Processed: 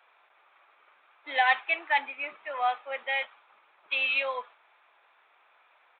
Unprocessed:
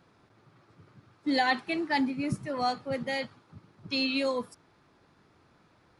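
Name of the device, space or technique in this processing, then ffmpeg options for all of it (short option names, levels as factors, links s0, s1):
musical greeting card: -af "aresample=8000,aresample=44100,highpass=f=660:w=0.5412,highpass=f=660:w=1.3066,equalizer=f=2400:t=o:w=0.33:g=6.5,volume=1.5"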